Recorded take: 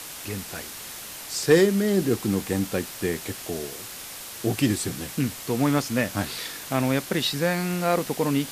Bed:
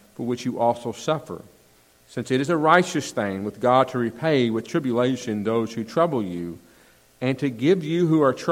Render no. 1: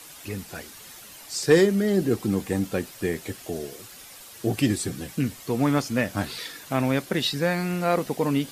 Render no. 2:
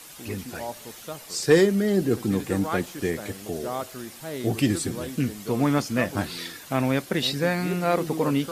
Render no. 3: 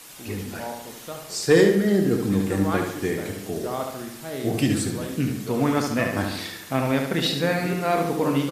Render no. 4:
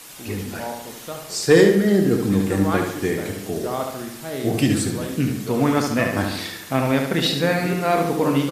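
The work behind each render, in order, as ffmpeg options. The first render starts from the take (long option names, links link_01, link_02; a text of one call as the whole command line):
ffmpeg -i in.wav -af "afftdn=noise_reduction=9:noise_floor=-39" out.wav
ffmpeg -i in.wav -i bed.wav -filter_complex "[1:a]volume=-14dB[link_01];[0:a][link_01]amix=inputs=2:normalize=0" out.wav
ffmpeg -i in.wav -filter_complex "[0:a]asplit=2[link_01][link_02];[link_02]adelay=30,volume=-10.5dB[link_03];[link_01][link_03]amix=inputs=2:normalize=0,asplit=2[link_04][link_05];[link_05]adelay=72,lowpass=frequency=4700:poles=1,volume=-5dB,asplit=2[link_06][link_07];[link_07]adelay=72,lowpass=frequency=4700:poles=1,volume=0.53,asplit=2[link_08][link_09];[link_09]adelay=72,lowpass=frequency=4700:poles=1,volume=0.53,asplit=2[link_10][link_11];[link_11]adelay=72,lowpass=frequency=4700:poles=1,volume=0.53,asplit=2[link_12][link_13];[link_13]adelay=72,lowpass=frequency=4700:poles=1,volume=0.53,asplit=2[link_14][link_15];[link_15]adelay=72,lowpass=frequency=4700:poles=1,volume=0.53,asplit=2[link_16][link_17];[link_17]adelay=72,lowpass=frequency=4700:poles=1,volume=0.53[link_18];[link_06][link_08][link_10][link_12][link_14][link_16][link_18]amix=inputs=7:normalize=0[link_19];[link_04][link_19]amix=inputs=2:normalize=0" out.wav
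ffmpeg -i in.wav -af "volume=3dB" out.wav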